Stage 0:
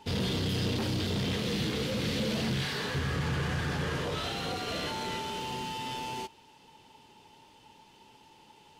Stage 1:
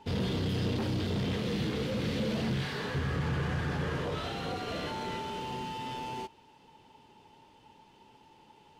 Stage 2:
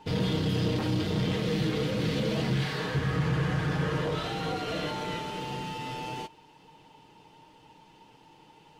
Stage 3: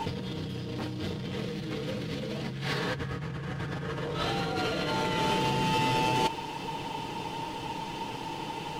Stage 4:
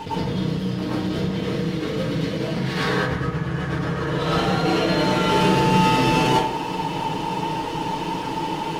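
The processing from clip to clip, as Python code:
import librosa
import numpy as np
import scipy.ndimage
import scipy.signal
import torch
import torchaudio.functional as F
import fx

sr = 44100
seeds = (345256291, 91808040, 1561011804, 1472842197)

y1 = fx.high_shelf(x, sr, hz=2800.0, db=-9.0)
y2 = y1 + 0.52 * np.pad(y1, (int(6.4 * sr / 1000.0), 0))[:len(y1)]
y2 = y2 * 10.0 ** (2.5 / 20.0)
y3 = fx.over_compress(y2, sr, threshold_db=-41.0, ratio=-1.0)
y3 = y3 * 10.0 ** (9.0 / 20.0)
y4 = fx.rev_plate(y3, sr, seeds[0], rt60_s=0.68, hf_ratio=0.45, predelay_ms=90, drr_db=-9.0)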